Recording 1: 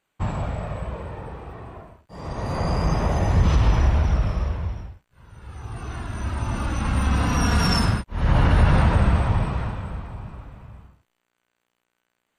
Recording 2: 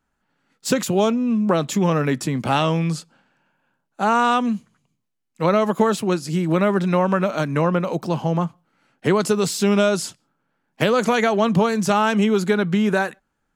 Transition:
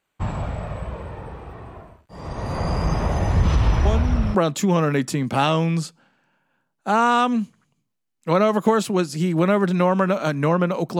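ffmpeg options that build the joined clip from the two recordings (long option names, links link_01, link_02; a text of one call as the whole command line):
ffmpeg -i cue0.wav -i cue1.wav -filter_complex "[1:a]asplit=2[link_01][link_02];[0:a]apad=whole_dur=10.99,atrim=end=10.99,atrim=end=4.352[link_03];[link_02]atrim=start=1.478:end=8.12[link_04];[link_01]atrim=start=0.98:end=1.48,asetpts=PTS-STARTPTS,volume=-7.5dB,afade=type=in:duration=0.004:curve=hsin,afade=type=out:start_time=0.496:duration=0.004:curve=hsin,adelay=169785S[link_05];[link_03][link_04]acrossfade=duration=0.004:curve1=hsin:curve2=hsin[link_06];[link_06][link_05]amix=inputs=2:normalize=0" out.wav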